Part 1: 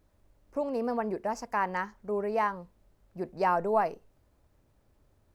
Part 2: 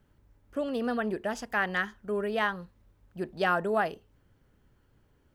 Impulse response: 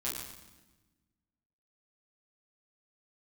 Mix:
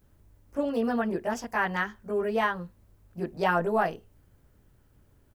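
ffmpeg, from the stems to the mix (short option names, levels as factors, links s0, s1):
-filter_complex "[0:a]crystalizer=i=2:c=0,volume=0.631[s0];[1:a]lowpass=3700,adelay=17,volume=0.944[s1];[s0][s1]amix=inputs=2:normalize=0,lowshelf=f=230:g=4.5"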